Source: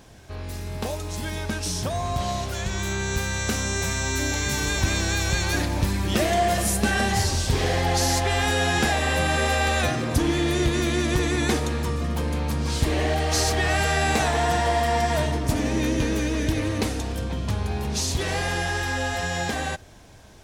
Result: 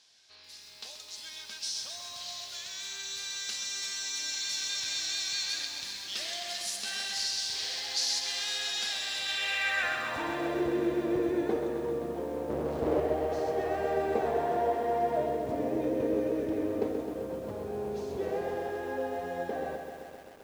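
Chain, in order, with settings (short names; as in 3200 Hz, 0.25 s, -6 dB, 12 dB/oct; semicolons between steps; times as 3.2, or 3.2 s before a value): 12.5–13 half-waves squared off; band-pass sweep 4500 Hz -> 470 Hz, 9.16–10.67; lo-fi delay 0.13 s, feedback 80%, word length 9-bit, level -7.5 dB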